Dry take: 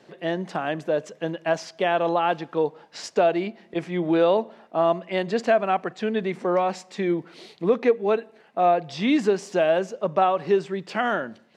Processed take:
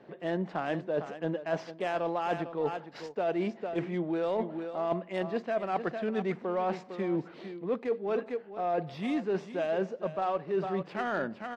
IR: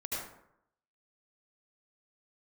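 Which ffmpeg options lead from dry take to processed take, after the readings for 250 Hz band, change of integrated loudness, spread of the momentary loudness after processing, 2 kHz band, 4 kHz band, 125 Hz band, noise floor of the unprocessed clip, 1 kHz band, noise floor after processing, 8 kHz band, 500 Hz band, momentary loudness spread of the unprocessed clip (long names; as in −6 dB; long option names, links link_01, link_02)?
−7.0 dB, −8.5 dB, 4 LU, −9.0 dB, −12.0 dB, −5.0 dB, −55 dBFS, −9.5 dB, −51 dBFS, can't be measured, −8.5 dB, 8 LU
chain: -af "adynamicsmooth=sensitivity=1.5:basefreq=2200,aecho=1:1:454:0.188,areverse,acompressor=threshold=-27dB:ratio=12,areverse" -ar 32000 -c:a aac -b:a 48k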